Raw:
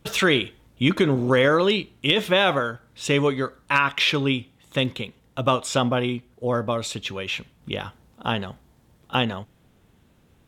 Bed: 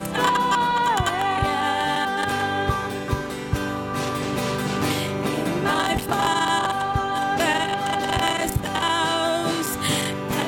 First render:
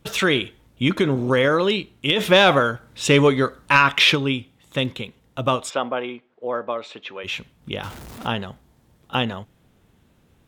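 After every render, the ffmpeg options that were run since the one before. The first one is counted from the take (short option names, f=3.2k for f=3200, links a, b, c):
-filter_complex "[0:a]asplit=3[a][b][c];[a]afade=t=out:st=2.19:d=0.02[d];[b]acontrast=52,afade=t=in:st=2.19:d=0.02,afade=t=out:st=4.14:d=0.02[e];[c]afade=t=in:st=4.14:d=0.02[f];[d][e][f]amix=inputs=3:normalize=0,asplit=3[g][h][i];[g]afade=t=out:st=5.69:d=0.02[j];[h]highpass=390,lowpass=2.5k,afade=t=in:st=5.69:d=0.02,afade=t=out:st=7.23:d=0.02[k];[i]afade=t=in:st=7.23:d=0.02[l];[j][k][l]amix=inputs=3:normalize=0,asettb=1/sr,asplit=3[m][n][o];[m]atrim=end=7.834[p];[n]atrim=start=7.83:end=8.27,asetpts=PTS-STARTPTS,afade=t=in:d=0.004:c=qsin,afade=t=out:st=0.436:d=0.004:c=qsin,aeval=exprs='val(0)+0.5*0.02*sgn(val(0))':c=same[q];[o]atrim=start=8.266[r];[p][q]acrossfade=d=0.004:c1=hsin:c2=qsin[s];[s][r]acrossfade=d=0.004:c1=qsin:c2=hsin"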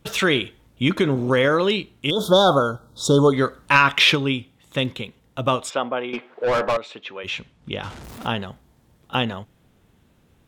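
-filter_complex "[0:a]asplit=3[a][b][c];[a]afade=t=out:st=2.09:d=0.02[d];[b]asuperstop=centerf=2200:order=12:qfactor=1.1,afade=t=in:st=2.09:d=0.02,afade=t=out:st=3.32:d=0.02[e];[c]afade=t=in:st=3.32:d=0.02[f];[d][e][f]amix=inputs=3:normalize=0,asettb=1/sr,asplit=3[g][h][i];[g]atrim=end=6.134[j];[h]atrim=start=6.13:end=6.77,asetpts=PTS-STARTPTS,afade=t=in:d=0.004:c=qsin,afade=t=out:st=0.636:d=0.004:c=qsin,asplit=2[k][l];[l]highpass=f=720:p=1,volume=26dB,asoftclip=type=tanh:threshold=-13dB[m];[k][m]amix=inputs=2:normalize=0,lowpass=f=2.8k:p=1,volume=-6dB[n];[i]atrim=start=6.766[o];[j][n]acrossfade=d=0.004:c1=hsin:c2=qsin[p];[p][o]acrossfade=d=0.004:c1=qsin:c2=hsin,asettb=1/sr,asplit=3[q][r][s];[q]atrim=end=7.294[t];[r]atrim=start=7.29:end=8.04,asetpts=PTS-STARTPTS,afade=t=in:d=0.004:c=qsin,afade=t=out:st=0.746:d=0.004:c=qsin,lowpass=7.4k[u];[s]atrim=start=8.036[v];[t][u]acrossfade=d=0.004:c1=hsin:c2=qsin[w];[w][v]acrossfade=d=0.004:c1=qsin:c2=hsin"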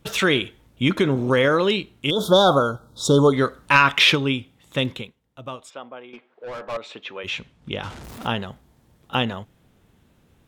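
-filter_complex "[0:a]asplit=3[a][b][c];[a]atrim=end=5.15,asetpts=PTS-STARTPTS,afade=t=out:st=4.95:d=0.2:silence=0.211349[d];[b]atrim=start=5.15:end=6.68,asetpts=PTS-STARTPTS,volume=-13.5dB[e];[c]atrim=start=6.68,asetpts=PTS-STARTPTS,afade=t=in:d=0.2:silence=0.211349[f];[d][e][f]concat=n=3:v=0:a=1"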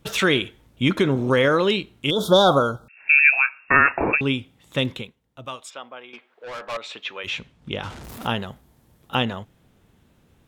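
-filter_complex "[0:a]asettb=1/sr,asplit=3[a][b][c];[a]atrim=end=2.884[d];[b]atrim=start=2.88:end=4.21,asetpts=PTS-STARTPTS,afade=t=in:d=0.004:c=qsin,afade=t=out:st=1.326:d=0.004:c=qsin,lowpass=f=2.4k:t=q:w=0.5098,lowpass=f=2.4k:t=q:w=0.6013,lowpass=f=2.4k:t=q:w=0.9,lowpass=f=2.4k:t=q:w=2.563,afreqshift=-2800[e];[c]atrim=start=4.206[f];[d][e]acrossfade=d=0.004:c1=hsin:c2=qsin[g];[g][f]acrossfade=d=0.004:c1=qsin:c2=hsin,asettb=1/sr,asplit=3[h][i][j];[h]atrim=end=5.454[k];[i]atrim=start=5.45:end=7.27,asetpts=PTS-STARTPTS,afade=t=in:d=0.004:c=qsin,afade=t=out:st=1.816:d=0.004:c=qsin,tiltshelf=f=910:g=-5.5[l];[j]atrim=start=7.266[m];[k][l]acrossfade=d=0.004:c1=hsin:c2=qsin[n];[n][m]acrossfade=d=0.004:c1=qsin:c2=hsin,asettb=1/sr,asplit=3[o][p][q];[o]atrim=end=8.094[r];[p]atrim=start=8.09:end=9.15,asetpts=PTS-STARTPTS,afade=t=in:d=0.004:c=qsin,afade=t=out:st=1.056:d=0.004:c=qsin,equalizer=f=13k:w=1:g=6.5[s];[q]atrim=start=9.146[t];[r][s]acrossfade=d=0.004:c1=hsin:c2=qsin[u];[u][t]acrossfade=d=0.004:c1=qsin:c2=hsin"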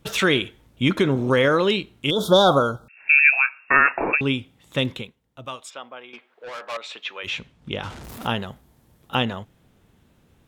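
-filter_complex "[0:a]asettb=1/sr,asplit=3[a][b][c];[a]atrim=end=3.194[d];[b]atrim=start=3.19:end=4.19,asetpts=PTS-STARTPTS,afade=t=in:d=0.004:c=qsin,afade=t=out:st=0.996:d=0.004:c=qsin,equalizer=f=63:w=0.35:g=-11.5[e];[c]atrim=start=4.186[f];[d][e]acrossfade=d=0.004:c1=hsin:c2=qsin[g];[g][f]acrossfade=d=0.004:c1=qsin:c2=hsin,asettb=1/sr,asplit=3[h][i][j];[h]atrim=end=6.494[k];[i]atrim=start=6.49:end=7.23,asetpts=PTS-STARTPTS,afade=t=in:d=0.004:c=qsin,afade=t=out:st=0.736:d=0.004:c=qsin,highpass=f=410:p=1[l];[j]atrim=start=7.226[m];[k][l]acrossfade=d=0.004:c1=hsin:c2=qsin[n];[n][m]acrossfade=d=0.004:c1=qsin:c2=hsin"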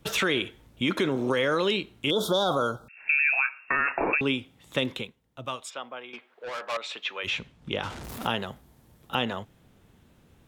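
-filter_complex "[0:a]alimiter=limit=-12dB:level=0:latency=1:release=11,acrossover=split=240|2400[a][b][c];[a]acompressor=threshold=-39dB:ratio=4[d];[b]acompressor=threshold=-23dB:ratio=4[e];[c]acompressor=threshold=-29dB:ratio=4[f];[d][e][f]amix=inputs=3:normalize=0"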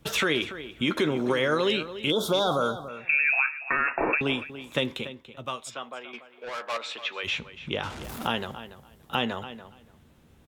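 -filter_complex "[0:a]asplit=2[a][b];[b]adelay=13,volume=-11.5dB[c];[a][c]amix=inputs=2:normalize=0,asplit=2[d][e];[e]adelay=287,lowpass=f=4k:p=1,volume=-13dB,asplit=2[f][g];[g]adelay=287,lowpass=f=4k:p=1,volume=0.17[h];[d][f][h]amix=inputs=3:normalize=0"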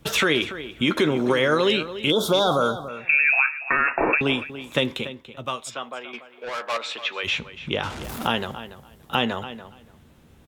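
-af "volume=4.5dB"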